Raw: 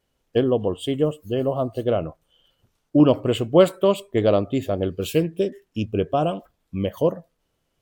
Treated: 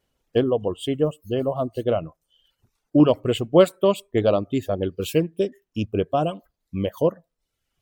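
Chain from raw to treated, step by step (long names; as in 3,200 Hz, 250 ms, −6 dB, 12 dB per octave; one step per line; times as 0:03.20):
reverb reduction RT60 0.71 s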